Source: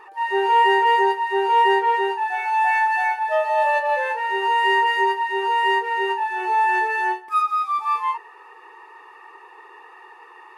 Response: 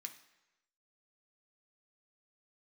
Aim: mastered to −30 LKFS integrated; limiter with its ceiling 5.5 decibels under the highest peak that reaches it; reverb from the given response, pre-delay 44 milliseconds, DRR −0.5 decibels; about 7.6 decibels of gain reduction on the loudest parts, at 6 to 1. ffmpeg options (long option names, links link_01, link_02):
-filter_complex "[0:a]acompressor=threshold=-21dB:ratio=6,alimiter=limit=-20.5dB:level=0:latency=1,asplit=2[link_01][link_02];[1:a]atrim=start_sample=2205,adelay=44[link_03];[link_02][link_03]afir=irnorm=-1:irlink=0,volume=5dB[link_04];[link_01][link_04]amix=inputs=2:normalize=0,volume=-6dB"